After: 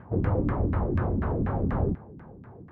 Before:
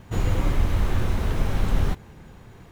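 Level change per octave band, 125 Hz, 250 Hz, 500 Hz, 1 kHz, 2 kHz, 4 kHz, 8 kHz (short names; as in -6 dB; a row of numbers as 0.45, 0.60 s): -1.5 dB, +3.0 dB, +3.0 dB, 0.0 dB, -6.0 dB, under -20 dB, n/a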